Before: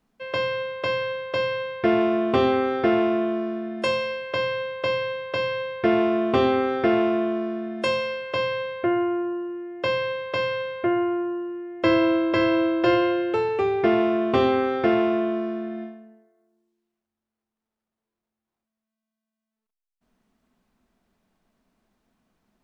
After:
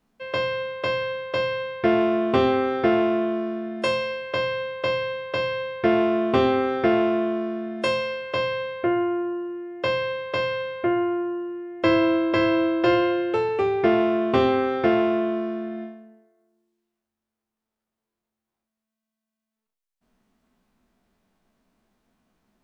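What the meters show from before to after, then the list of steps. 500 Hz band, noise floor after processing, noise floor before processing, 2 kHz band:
0.0 dB, under -85 dBFS, under -85 dBFS, 0.0 dB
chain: spectral trails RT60 0.34 s

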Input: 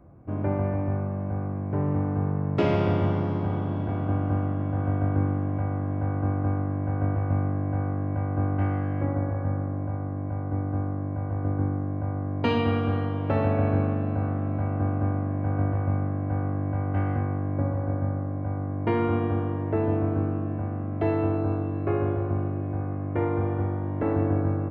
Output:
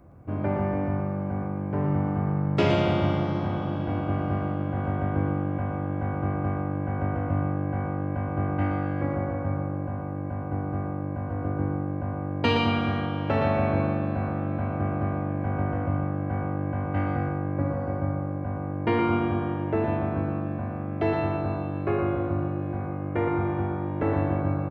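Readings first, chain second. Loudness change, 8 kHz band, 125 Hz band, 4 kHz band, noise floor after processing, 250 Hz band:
-0.5 dB, n/a, -2.0 dB, +7.0 dB, -31 dBFS, +0.5 dB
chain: high shelf 2100 Hz +8.5 dB; on a send: echo 0.117 s -6 dB

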